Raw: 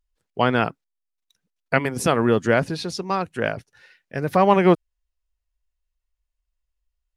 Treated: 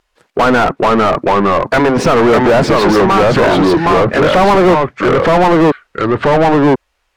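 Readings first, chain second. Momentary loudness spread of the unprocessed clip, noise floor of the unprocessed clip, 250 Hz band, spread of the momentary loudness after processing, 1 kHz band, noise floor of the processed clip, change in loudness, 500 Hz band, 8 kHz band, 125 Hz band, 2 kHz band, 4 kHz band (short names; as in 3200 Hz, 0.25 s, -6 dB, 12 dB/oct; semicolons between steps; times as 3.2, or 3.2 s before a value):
11 LU, -81 dBFS, +13.0 dB, 4 LU, +13.5 dB, -65 dBFS, +10.5 dB, +13.5 dB, +7.5 dB, +10.5 dB, +11.5 dB, +13.0 dB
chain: treble ducked by the level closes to 1500 Hz, closed at -18 dBFS; echoes that change speed 0.385 s, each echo -2 st, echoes 2; overdrive pedal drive 37 dB, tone 1400 Hz, clips at -3.5 dBFS; gain +2 dB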